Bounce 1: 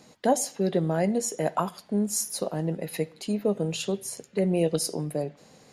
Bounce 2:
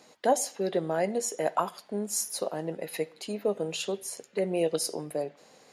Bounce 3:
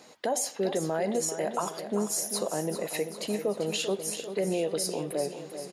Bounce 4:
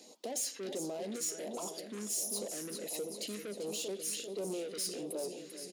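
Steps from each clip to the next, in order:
tone controls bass -14 dB, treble -2 dB
limiter -23.5 dBFS, peak gain reduction 11.5 dB; on a send: feedback echo 0.392 s, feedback 58%, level -10 dB; on the sum: gain +3.5 dB
soft clip -32 dBFS, distortion -8 dB; phaser stages 2, 1.4 Hz, lowest notch 750–1700 Hz; HPF 220 Hz 24 dB/oct

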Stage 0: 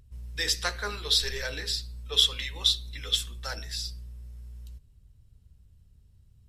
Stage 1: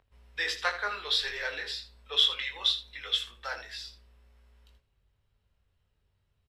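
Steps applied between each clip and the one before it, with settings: three-band isolator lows -20 dB, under 460 Hz, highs -19 dB, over 3500 Hz; early reflections 21 ms -5.5 dB, 80 ms -12.5 dB; gain +2 dB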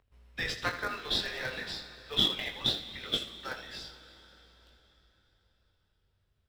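in parallel at -8 dB: decimation with a swept rate 36×, swing 60% 0.39 Hz; on the sum: plate-style reverb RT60 4.3 s, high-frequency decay 0.9×, DRR 11 dB; gain -3.5 dB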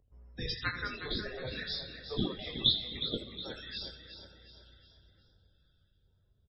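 loudest bins only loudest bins 64; phaser stages 2, 1 Hz, lowest notch 560–2900 Hz; frequency-shifting echo 0.363 s, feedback 42%, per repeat +31 Hz, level -10 dB; gain +2.5 dB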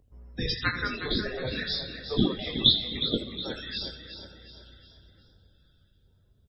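bell 250 Hz +4 dB 0.94 oct; gain +6.5 dB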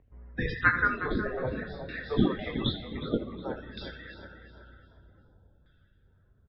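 LFO low-pass saw down 0.53 Hz 900–2100 Hz

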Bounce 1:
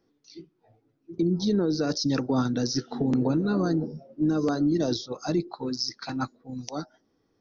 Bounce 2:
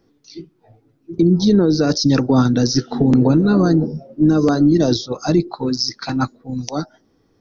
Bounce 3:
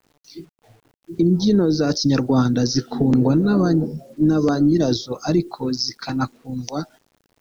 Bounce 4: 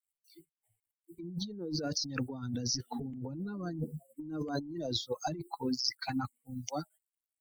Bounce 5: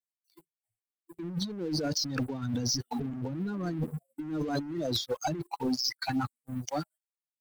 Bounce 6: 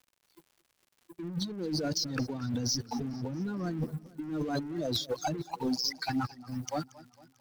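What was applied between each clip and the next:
low shelf 150 Hz +6.5 dB; gain +9 dB
bit-crush 9-bit; gain -3 dB
per-bin expansion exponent 2; negative-ratio compressor -30 dBFS, ratio -1; gain -7 dB
sample leveller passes 3; gain -6 dB
crackle 180/s -51 dBFS; warbling echo 0.225 s, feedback 55%, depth 120 cents, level -19.5 dB; gain -1 dB

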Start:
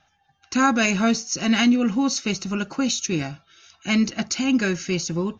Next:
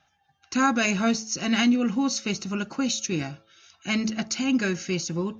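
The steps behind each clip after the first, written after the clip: HPF 54 Hz; de-hum 109.2 Hz, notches 9; gain -3 dB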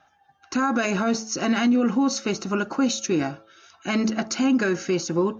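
band shelf 640 Hz +9 dB 3 oct; limiter -13.5 dBFS, peak gain reduction 11 dB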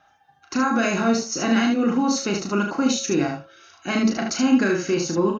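early reflections 35 ms -5 dB, 75 ms -5 dB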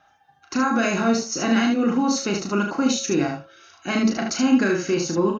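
nothing audible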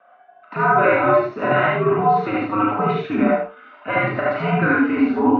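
three-band isolator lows -22 dB, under 380 Hz, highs -15 dB, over 2000 Hz; mistuned SSB -93 Hz 210–3300 Hz; non-linear reverb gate 0.11 s rising, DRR -3 dB; gain +5.5 dB

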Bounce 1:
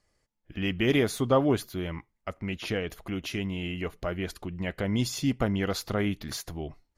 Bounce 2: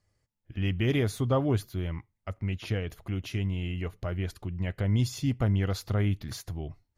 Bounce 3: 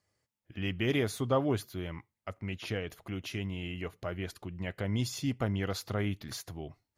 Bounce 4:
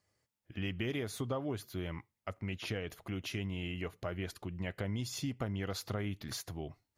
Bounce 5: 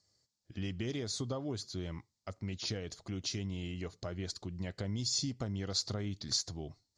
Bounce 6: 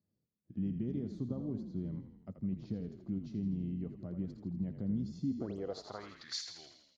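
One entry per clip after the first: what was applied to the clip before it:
bell 100 Hz +13.5 dB 1 oct; gain -5 dB
HPF 250 Hz 6 dB/oct
compressor 6:1, threshold -33 dBFS, peak gain reduction 10.5 dB
EQ curve 220 Hz 0 dB, 2800 Hz -7 dB, 4400 Hz +12 dB, 7400 Hz +8 dB, 13000 Hz -28 dB
frequency-shifting echo 82 ms, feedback 59%, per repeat -37 Hz, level -8.5 dB; painted sound rise, 5.38–5.58, 240–9300 Hz -48 dBFS; band-pass sweep 200 Hz -> 2200 Hz, 5.2–6.38; gain +6.5 dB

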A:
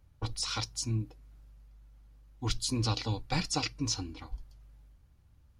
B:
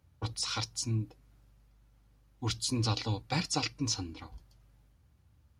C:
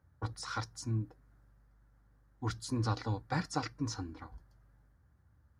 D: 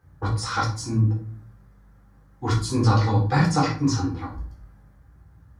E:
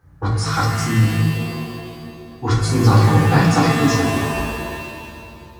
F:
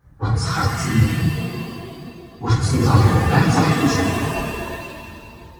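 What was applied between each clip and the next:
HPF 63 Hz 24 dB/oct
resonant high shelf 2100 Hz -7.5 dB, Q 3; gain -2 dB
reverb RT60 0.45 s, pre-delay 8 ms, DRR -3.5 dB; gain +6.5 dB
shimmer reverb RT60 2.1 s, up +7 st, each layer -2 dB, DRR 5.5 dB; gain +4 dB
phase scrambler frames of 50 ms; gain -1.5 dB

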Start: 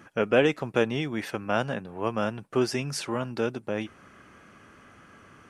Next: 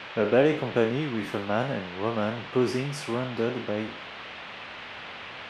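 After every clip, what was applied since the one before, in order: spectral trails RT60 0.45 s; tilt shelf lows +5 dB, about 1400 Hz; band noise 430–3200 Hz -37 dBFS; gain -4 dB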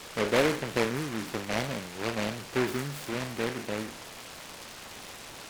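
noise-modulated delay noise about 1400 Hz, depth 0.19 ms; gain -4 dB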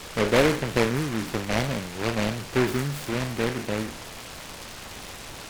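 low shelf 110 Hz +10.5 dB; gain +4 dB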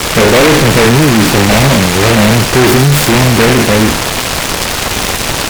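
fuzz box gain 36 dB, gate -42 dBFS; gain +8.5 dB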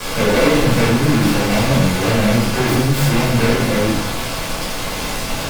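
shoebox room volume 360 m³, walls furnished, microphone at 5.4 m; gain -18 dB

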